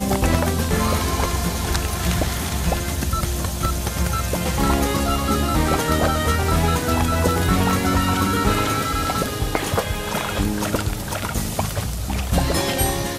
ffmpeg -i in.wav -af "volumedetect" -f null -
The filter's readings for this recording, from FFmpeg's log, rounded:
mean_volume: -20.6 dB
max_volume: -2.3 dB